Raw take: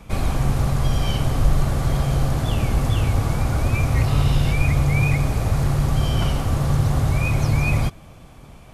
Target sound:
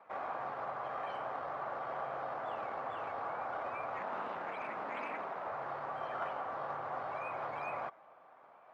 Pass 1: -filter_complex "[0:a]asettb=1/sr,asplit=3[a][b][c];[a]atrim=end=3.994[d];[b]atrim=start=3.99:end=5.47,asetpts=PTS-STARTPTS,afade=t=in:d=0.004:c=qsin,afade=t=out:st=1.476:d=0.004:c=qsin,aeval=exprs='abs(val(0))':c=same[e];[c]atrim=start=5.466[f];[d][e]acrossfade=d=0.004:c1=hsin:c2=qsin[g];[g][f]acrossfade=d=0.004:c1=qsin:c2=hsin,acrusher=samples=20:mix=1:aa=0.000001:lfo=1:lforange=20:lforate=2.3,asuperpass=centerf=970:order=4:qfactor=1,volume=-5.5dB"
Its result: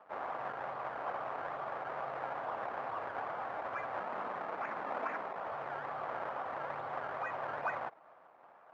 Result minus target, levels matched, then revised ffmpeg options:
decimation with a swept rate: distortion +5 dB
-filter_complex "[0:a]asettb=1/sr,asplit=3[a][b][c];[a]atrim=end=3.994[d];[b]atrim=start=3.99:end=5.47,asetpts=PTS-STARTPTS,afade=t=in:d=0.004:c=qsin,afade=t=out:st=1.476:d=0.004:c=qsin,aeval=exprs='abs(val(0))':c=same[e];[c]atrim=start=5.466[f];[d][e]acrossfade=d=0.004:c1=hsin:c2=qsin[g];[g][f]acrossfade=d=0.004:c1=qsin:c2=hsin,acrusher=samples=7:mix=1:aa=0.000001:lfo=1:lforange=7:lforate=2.3,asuperpass=centerf=970:order=4:qfactor=1,volume=-5.5dB"

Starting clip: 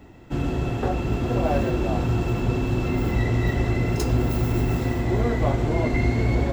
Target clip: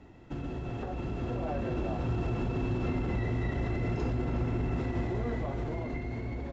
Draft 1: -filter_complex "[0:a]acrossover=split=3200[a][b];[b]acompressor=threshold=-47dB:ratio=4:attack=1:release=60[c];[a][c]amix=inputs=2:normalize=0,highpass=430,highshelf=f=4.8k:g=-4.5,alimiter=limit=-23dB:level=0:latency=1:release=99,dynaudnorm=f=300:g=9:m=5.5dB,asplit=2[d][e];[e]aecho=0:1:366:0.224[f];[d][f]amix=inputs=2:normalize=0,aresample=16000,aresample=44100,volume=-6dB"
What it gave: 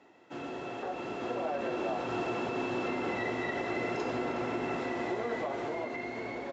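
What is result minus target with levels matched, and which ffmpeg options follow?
500 Hz band +4.0 dB
-filter_complex "[0:a]acrossover=split=3200[a][b];[b]acompressor=threshold=-47dB:ratio=4:attack=1:release=60[c];[a][c]amix=inputs=2:normalize=0,highshelf=f=4.8k:g=-4.5,alimiter=limit=-23dB:level=0:latency=1:release=99,dynaudnorm=f=300:g=9:m=5.5dB,asplit=2[d][e];[e]aecho=0:1:366:0.224[f];[d][f]amix=inputs=2:normalize=0,aresample=16000,aresample=44100,volume=-6dB"

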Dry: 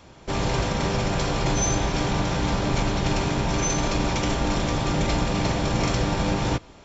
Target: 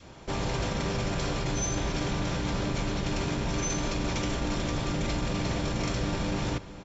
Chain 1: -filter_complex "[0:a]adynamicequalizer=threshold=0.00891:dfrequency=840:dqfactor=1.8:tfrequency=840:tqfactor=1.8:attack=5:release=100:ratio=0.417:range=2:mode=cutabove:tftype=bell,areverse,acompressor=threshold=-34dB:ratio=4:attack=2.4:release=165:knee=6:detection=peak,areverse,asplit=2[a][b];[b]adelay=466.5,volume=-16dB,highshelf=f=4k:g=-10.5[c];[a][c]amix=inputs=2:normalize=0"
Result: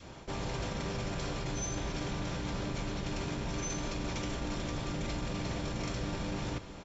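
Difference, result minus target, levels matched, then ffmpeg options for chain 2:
compressor: peak gain reduction +6.5 dB
-filter_complex "[0:a]adynamicequalizer=threshold=0.00891:dfrequency=840:dqfactor=1.8:tfrequency=840:tqfactor=1.8:attack=5:release=100:ratio=0.417:range=2:mode=cutabove:tftype=bell,areverse,acompressor=threshold=-25.5dB:ratio=4:attack=2.4:release=165:knee=6:detection=peak,areverse,asplit=2[a][b];[b]adelay=466.5,volume=-16dB,highshelf=f=4k:g=-10.5[c];[a][c]amix=inputs=2:normalize=0"

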